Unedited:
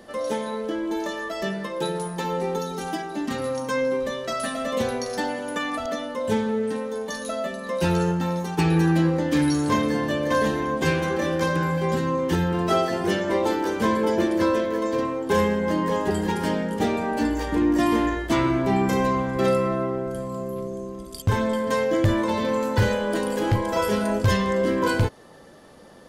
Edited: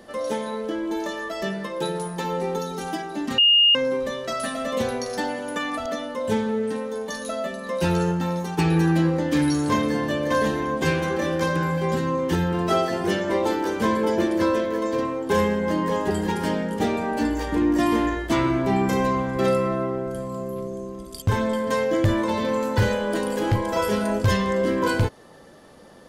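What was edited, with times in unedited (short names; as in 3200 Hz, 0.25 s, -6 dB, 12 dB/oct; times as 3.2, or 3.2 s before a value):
3.38–3.75 bleep 2840 Hz -12.5 dBFS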